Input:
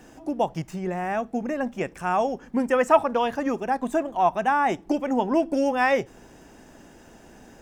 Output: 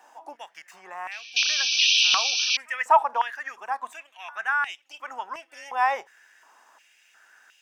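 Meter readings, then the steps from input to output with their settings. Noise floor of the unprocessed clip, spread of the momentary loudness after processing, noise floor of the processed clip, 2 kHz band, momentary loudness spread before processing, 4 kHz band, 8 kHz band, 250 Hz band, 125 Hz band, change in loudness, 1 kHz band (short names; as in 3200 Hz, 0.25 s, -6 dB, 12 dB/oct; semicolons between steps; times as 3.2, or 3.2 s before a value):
-50 dBFS, 21 LU, -61 dBFS, +4.0 dB, 9 LU, +20.5 dB, +16.0 dB, under -30 dB, under -30 dB, +2.0 dB, -1.5 dB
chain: painted sound noise, 1.36–2.57, 2300–6200 Hz -20 dBFS; pre-echo 0.249 s -23.5 dB; stepped high-pass 2.8 Hz 900–2800 Hz; gain -6 dB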